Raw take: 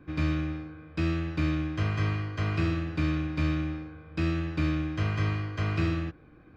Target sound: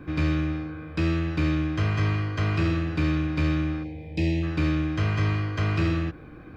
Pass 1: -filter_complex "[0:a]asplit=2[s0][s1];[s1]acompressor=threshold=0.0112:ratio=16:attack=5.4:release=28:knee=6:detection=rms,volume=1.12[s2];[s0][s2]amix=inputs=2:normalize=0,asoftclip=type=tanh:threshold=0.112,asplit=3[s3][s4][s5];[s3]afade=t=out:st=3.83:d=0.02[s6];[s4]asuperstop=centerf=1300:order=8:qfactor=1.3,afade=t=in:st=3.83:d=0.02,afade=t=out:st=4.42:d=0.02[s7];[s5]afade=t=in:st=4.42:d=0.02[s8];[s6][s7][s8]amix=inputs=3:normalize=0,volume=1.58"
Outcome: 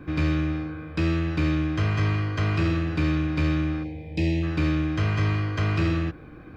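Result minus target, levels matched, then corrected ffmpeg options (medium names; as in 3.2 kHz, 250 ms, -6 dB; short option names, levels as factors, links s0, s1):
compression: peak gain reduction -6 dB
-filter_complex "[0:a]asplit=2[s0][s1];[s1]acompressor=threshold=0.00531:ratio=16:attack=5.4:release=28:knee=6:detection=rms,volume=1.12[s2];[s0][s2]amix=inputs=2:normalize=0,asoftclip=type=tanh:threshold=0.112,asplit=3[s3][s4][s5];[s3]afade=t=out:st=3.83:d=0.02[s6];[s4]asuperstop=centerf=1300:order=8:qfactor=1.3,afade=t=in:st=3.83:d=0.02,afade=t=out:st=4.42:d=0.02[s7];[s5]afade=t=in:st=4.42:d=0.02[s8];[s6][s7][s8]amix=inputs=3:normalize=0,volume=1.58"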